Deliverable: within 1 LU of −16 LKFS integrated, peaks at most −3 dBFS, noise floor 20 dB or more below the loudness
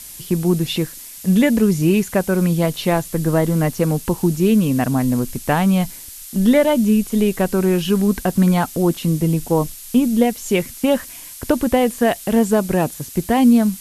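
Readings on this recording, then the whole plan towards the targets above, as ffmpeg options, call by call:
background noise floor −36 dBFS; target noise floor −38 dBFS; integrated loudness −18.0 LKFS; sample peak −1.0 dBFS; target loudness −16.0 LKFS
→ -af "afftdn=noise_reduction=6:noise_floor=-36"
-af "volume=2dB,alimiter=limit=-3dB:level=0:latency=1"

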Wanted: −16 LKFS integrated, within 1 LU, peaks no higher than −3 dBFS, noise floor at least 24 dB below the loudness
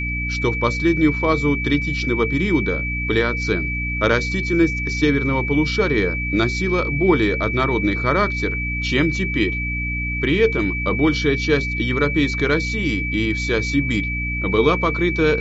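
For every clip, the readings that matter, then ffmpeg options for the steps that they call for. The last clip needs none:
mains hum 60 Hz; hum harmonics up to 300 Hz; level of the hum −24 dBFS; interfering tone 2,300 Hz; level of the tone −24 dBFS; integrated loudness −19.5 LKFS; sample peak −3.5 dBFS; target loudness −16.0 LKFS
→ -af "bandreject=frequency=60:width_type=h:width=4,bandreject=frequency=120:width_type=h:width=4,bandreject=frequency=180:width_type=h:width=4,bandreject=frequency=240:width_type=h:width=4,bandreject=frequency=300:width_type=h:width=4"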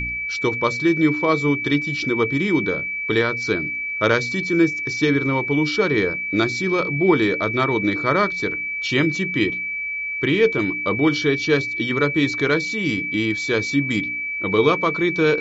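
mains hum none found; interfering tone 2,300 Hz; level of the tone −24 dBFS
→ -af "bandreject=frequency=2300:width=30"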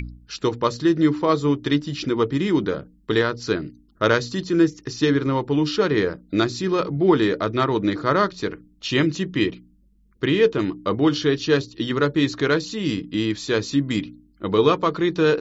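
interfering tone none found; integrated loudness −22.0 LKFS; sample peak −5.5 dBFS; target loudness −16.0 LKFS
→ -af "volume=6dB,alimiter=limit=-3dB:level=0:latency=1"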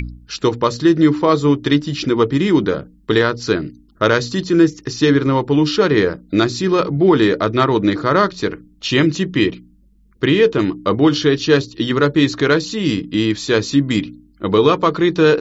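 integrated loudness −16.5 LKFS; sample peak −3.0 dBFS; background noise floor −51 dBFS

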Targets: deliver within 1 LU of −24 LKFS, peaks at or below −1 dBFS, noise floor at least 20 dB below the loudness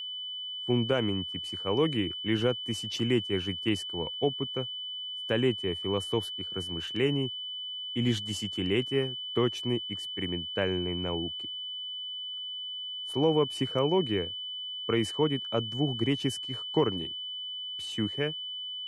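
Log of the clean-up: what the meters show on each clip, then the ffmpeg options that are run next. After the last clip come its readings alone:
interfering tone 3,000 Hz; level of the tone −35 dBFS; integrated loudness −30.5 LKFS; sample peak −14.0 dBFS; target loudness −24.0 LKFS
→ -af "bandreject=frequency=3000:width=30"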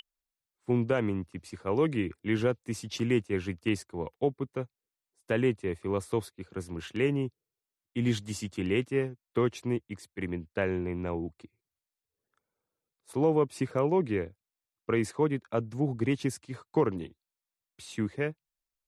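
interfering tone none found; integrated loudness −31.0 LKFS; sample peak −15.0 dBFS; target loudness −24.0 LKFS
→ -af "volume=7dB"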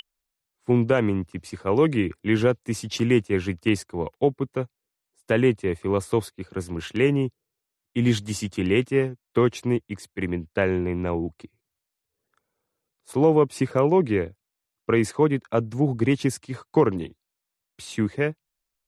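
integrated loudness −24.0 LKFS; sample peak −8.0 dBFS; background noise floor −84 dBFS

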